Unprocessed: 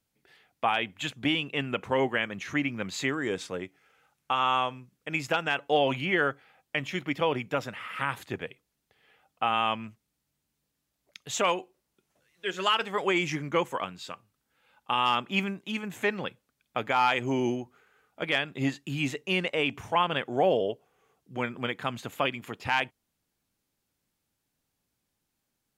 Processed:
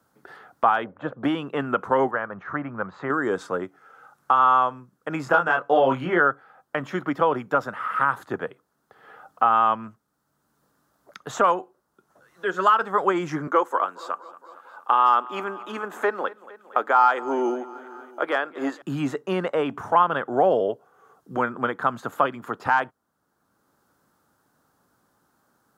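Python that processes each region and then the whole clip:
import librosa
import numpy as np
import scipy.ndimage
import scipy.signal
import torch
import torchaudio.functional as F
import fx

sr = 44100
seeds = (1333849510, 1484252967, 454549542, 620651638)

y = fx.chain(x, sr, fx.lowpass(hz=1400.0, slope=12),
    fx.peak_eq(hz=530.0, db=14.5, octaves=0.5), at=(0.84, 1.24))
y = fx.chain(y, sr, fx.block_float(bits=7),
    fx.lowpass(hz=1400.0, slope=12),
    fx.peak_eq(hz=280.0, db=-9.5, octaves=1.2), at=(2.11, 3.1))
y = fx.chain(y, sr, fx.high_shelf(hz=9700.0, db=-7.0),
    fx.doubler(ms=23.0, db=-3), at=(5.24, 6.2))
y = fx.chain(y, sr, fx.highpass(hz=300.0, slope=24),
    fx.echo_feedback(ms=230, feedback_pct=53, wet_db=-21.5), at=(13.47, 18.82))
y = fx.highpass(y, sr, hz=230.0, slope=6)
y = fx.high_shelf_res(y, sr, hz=1800.0, db=-9.5, q=3.0)
y = fx.band_squash(y, sr, depth_pct=40)
y = y * 10.0 ** (5.5 / 20.0)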